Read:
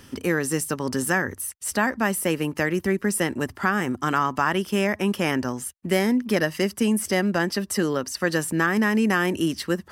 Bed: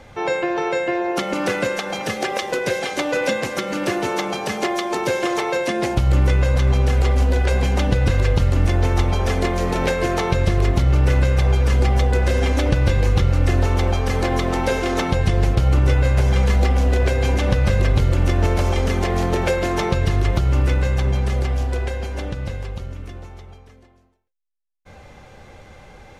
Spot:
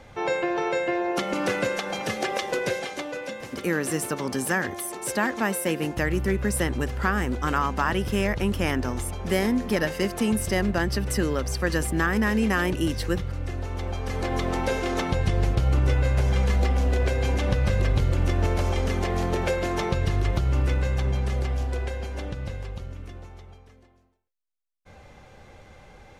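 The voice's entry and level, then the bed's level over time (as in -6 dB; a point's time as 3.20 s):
3.40 s, -2.5 dB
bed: 2.64 s -4 dB
3.25 s -14 dB
13.64 s -14 dB
14.44 s -5.5 dB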